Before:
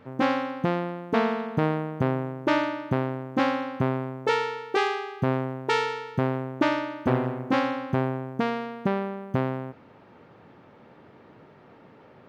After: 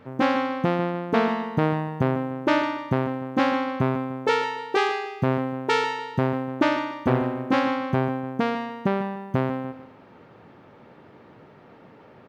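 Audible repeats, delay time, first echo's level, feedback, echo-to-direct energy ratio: 3, 149 ms, -13.0 dB, 31%, -12.5 dB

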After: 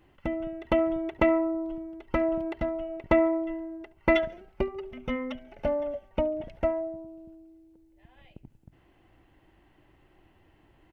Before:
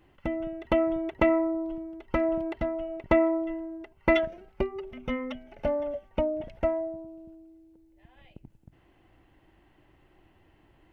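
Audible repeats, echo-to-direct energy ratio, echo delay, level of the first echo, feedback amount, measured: 2, -21.5 dB, 70 ms, -22.5 dB, 41%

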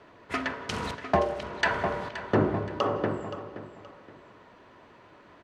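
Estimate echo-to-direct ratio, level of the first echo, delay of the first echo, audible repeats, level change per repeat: -12.5 dB, -13.0 dB, 523 ms, 2, -10.0 dB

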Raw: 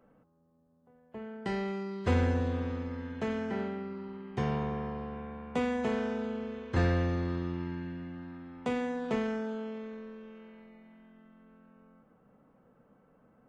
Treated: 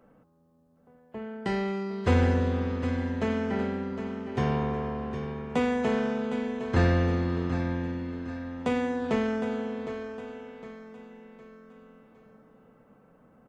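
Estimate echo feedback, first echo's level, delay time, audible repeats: 41%, -10.0 dB, 760 ms, 4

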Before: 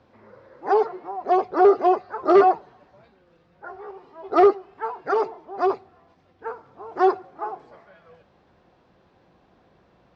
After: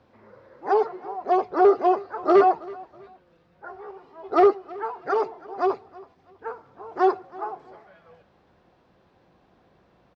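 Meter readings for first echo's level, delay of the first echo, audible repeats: -21.5 dB, 325 ms, 2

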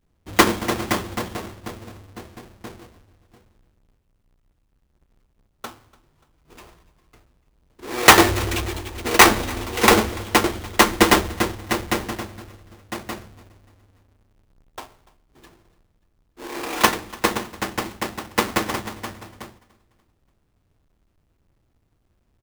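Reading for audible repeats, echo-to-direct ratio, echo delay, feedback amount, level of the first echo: 2, -21.5 dB, 291 ms, 45%, -22.5 dB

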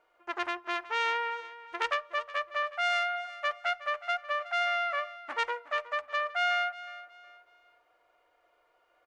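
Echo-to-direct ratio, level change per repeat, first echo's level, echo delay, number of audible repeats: -15.5 dB, -10.0 dB, -16.0 dB, 367 ms, 2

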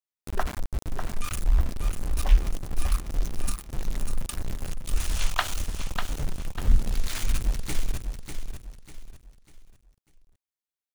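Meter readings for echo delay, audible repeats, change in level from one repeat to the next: 596 ms, 4, -9.0 dB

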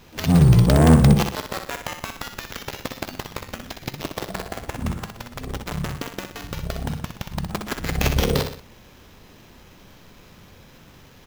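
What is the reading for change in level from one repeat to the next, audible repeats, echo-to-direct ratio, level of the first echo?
-7.0 dB, 3, -6.0 dB, -7.0 dB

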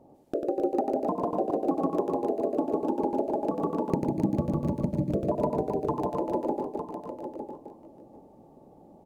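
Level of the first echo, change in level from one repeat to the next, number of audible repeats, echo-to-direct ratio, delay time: -4.5 dB, no regular repeats, 7, -0.5 dB, 95 ms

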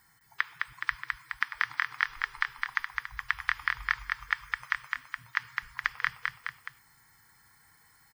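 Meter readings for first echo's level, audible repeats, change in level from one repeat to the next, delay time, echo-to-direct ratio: -3.5 dB, 3, -4.5 dB, 210 ms, -2.0 dB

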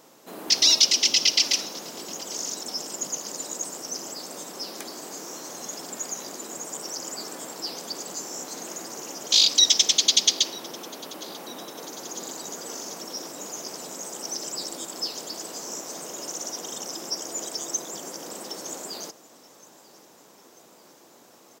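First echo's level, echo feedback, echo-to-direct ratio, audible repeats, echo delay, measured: -22.5 dB, 58%, -21.0 dB, 3, 942 ms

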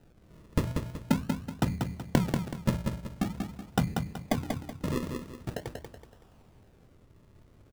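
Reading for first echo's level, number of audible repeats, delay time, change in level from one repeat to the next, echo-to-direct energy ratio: -5.0 dB, 4, 188 ms, -9.0 dB, -4.5 dB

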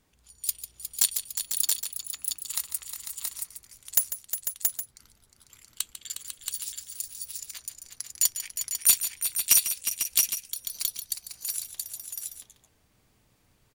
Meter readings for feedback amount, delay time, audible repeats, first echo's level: no regular repeats, 147 ms, 5, -12.0 dB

